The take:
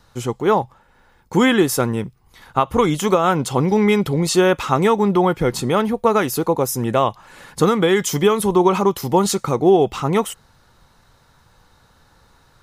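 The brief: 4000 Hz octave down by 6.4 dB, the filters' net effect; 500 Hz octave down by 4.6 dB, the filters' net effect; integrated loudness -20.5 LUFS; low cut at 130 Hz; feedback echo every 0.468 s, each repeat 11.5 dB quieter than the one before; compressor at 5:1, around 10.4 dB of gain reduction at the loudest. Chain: HPF 130 Hz; bell 500 Hz -6 dB; bell 4000 Hz -8.5 dB; compressor 5:1, threshold -25 dBFS; feedback echo 0.468 s, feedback 27%, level -11.5 dB; gain +8.5 dB

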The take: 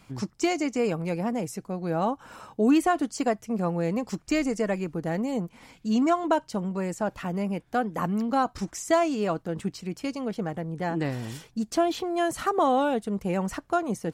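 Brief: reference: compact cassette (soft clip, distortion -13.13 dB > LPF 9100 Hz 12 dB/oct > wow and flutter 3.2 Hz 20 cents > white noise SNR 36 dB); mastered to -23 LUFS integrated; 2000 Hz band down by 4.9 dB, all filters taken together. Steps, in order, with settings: bell 2000 Hz -6.5 dB; soft clip -21.5 dBFS; LPF 9100 Hz 12 dB/oct; wow and flutter 3.2 Hz 20 cents; white noise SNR 36 dB; gain +7.5 dB

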